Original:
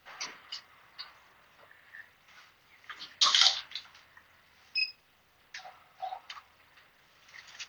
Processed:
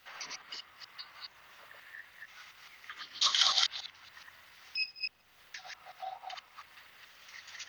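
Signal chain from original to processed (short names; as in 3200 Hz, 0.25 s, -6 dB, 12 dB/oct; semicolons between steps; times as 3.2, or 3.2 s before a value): reverse delay 0.141 s, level 0 dB; mismatched tape noise reduction encoder only; gain -5.5 dB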